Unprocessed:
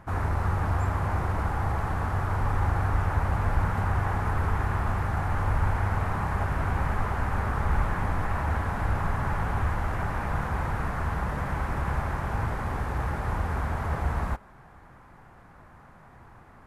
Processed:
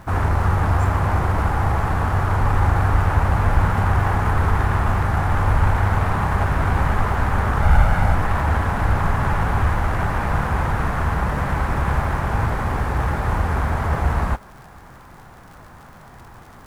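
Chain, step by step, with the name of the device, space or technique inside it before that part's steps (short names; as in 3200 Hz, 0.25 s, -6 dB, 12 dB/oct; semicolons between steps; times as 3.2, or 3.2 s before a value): 7.62–8.15 comb 1.4 ms, depth 53%; record under a worn stylus (tracing distortion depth 0.042 ms; crackle 77/s -45 dBFS; pink noise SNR 38 dB); gain +8 dB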